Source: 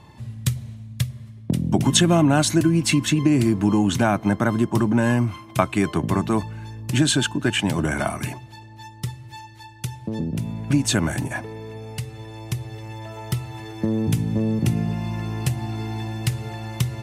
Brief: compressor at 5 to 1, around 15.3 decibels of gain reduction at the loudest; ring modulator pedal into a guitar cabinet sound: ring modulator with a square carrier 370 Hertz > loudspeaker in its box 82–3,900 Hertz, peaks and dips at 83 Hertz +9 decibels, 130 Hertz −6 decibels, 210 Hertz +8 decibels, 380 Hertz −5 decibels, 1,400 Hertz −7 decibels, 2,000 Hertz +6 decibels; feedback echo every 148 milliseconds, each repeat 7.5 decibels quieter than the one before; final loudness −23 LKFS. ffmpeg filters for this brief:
ffmpeg -i in.wav -af "acompressor=threshold=-31dB:ratio=5,aecho=1:1:148|296|444|592|740:0.422|0.177|0.0744|0.0312|0.0131,aeval=exprs='val(0)*sgn(sin(2*PI*370*n/s))':channel_layout=same,highpass=82,equalizer=frequency=83:width_type=q:width=4:gain=9,equalizer=frequency=130:width_type=q:width=4:gain=-6,equalizer=frequency=210:width_type=q:width=4:gain=8,equalizer=frequency=380:width_type=q:width=4:gain=-5,equalizer=frequency=1400:width_type=q:width=4:gain=-7,equalizer=frequency=2000:width_type=q:width=4:gain=6,lowpass=frequency=3900:width=0.5412,lowpass=frequency=3900:width=1.3066,volume=10.5dB" out.wav

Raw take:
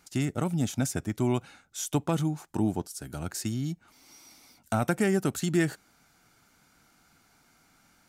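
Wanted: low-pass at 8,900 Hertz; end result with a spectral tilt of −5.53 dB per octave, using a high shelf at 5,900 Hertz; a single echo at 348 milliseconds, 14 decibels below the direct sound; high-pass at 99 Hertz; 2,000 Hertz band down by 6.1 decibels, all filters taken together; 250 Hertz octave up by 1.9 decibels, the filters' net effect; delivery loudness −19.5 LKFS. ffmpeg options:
ffmpeg -i in.wav -af "highpass=99,lowpass=8900,equalizer=frequency=250:width_type=o:gain=3,equalizer=frequency=2000:width_type=o:gain=-8.5,highshelf=frequency=5900:gain=5.5,aecho=1:1:348:0.2,volume=9.5dB" out.wav

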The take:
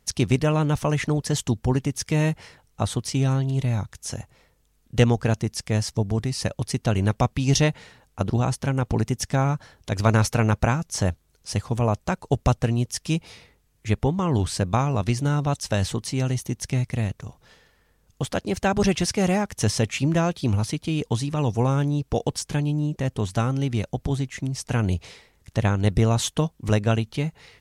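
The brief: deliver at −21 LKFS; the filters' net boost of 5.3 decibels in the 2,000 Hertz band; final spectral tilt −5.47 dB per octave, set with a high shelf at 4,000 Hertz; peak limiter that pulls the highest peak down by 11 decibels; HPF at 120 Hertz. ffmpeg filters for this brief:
ffmpeg -i in.wav -af "highpass=120,equalizer=frequency=2000:width_type=o:gain=8,highshelf=frequency=4000:gain=-4.5,volume=5.5dB,alimiter=limit=-8dB:level=0:latency=1" out.wav

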